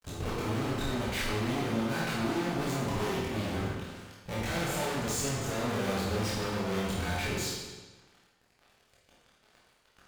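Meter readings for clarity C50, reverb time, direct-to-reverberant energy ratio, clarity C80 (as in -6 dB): -0.5 dB, 1.3 s, -7.0 dB, 2.5 dB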